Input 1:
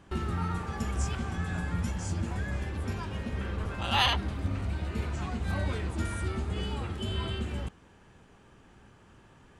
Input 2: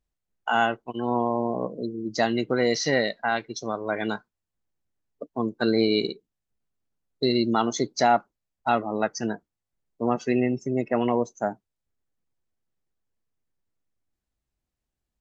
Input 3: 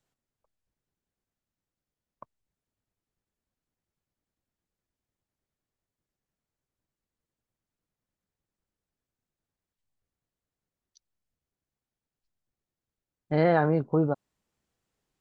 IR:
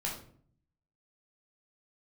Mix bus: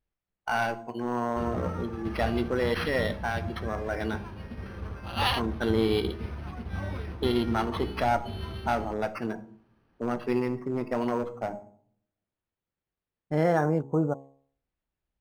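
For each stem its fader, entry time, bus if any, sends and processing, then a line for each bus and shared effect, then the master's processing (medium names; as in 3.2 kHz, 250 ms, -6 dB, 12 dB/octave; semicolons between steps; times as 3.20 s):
+1.0 dB, 1.25 s, no send, upward expansion 1.5:1, over -47 dBFS
-3.5 dB, 0.00 s, send -12.5 dB, one-sided clip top -21 dBFS
-1.0 dB, 0.00 s, no send, gate with hold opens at -55 dBFS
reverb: on, RT60 0.55 s, pre-delay 10 ms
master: de-hum 68.56 Hz, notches 16; decimation joined by straight lines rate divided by 6×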